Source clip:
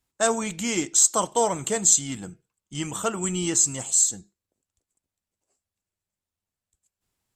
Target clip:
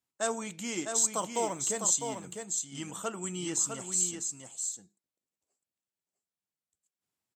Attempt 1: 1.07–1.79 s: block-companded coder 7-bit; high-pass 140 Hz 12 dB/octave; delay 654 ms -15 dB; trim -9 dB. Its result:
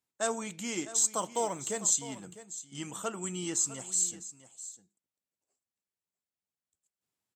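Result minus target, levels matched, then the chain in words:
echo-to-direct -9 dB
1.07–1.79 s: block-companded coder 7-bit; high-pass 140 Hz 12 dB/octave; delay 654 ms -6 dB; trim -9 dB

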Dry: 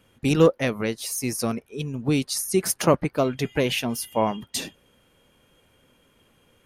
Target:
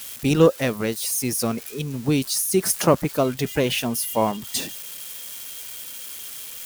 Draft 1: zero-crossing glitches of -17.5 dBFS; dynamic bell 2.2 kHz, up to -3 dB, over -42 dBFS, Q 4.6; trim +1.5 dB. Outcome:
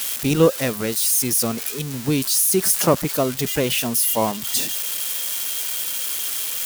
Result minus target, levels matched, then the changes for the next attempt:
zero-crossing glitches: distortion +10 dB
change: zero-crossing glitches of -28 dBFS

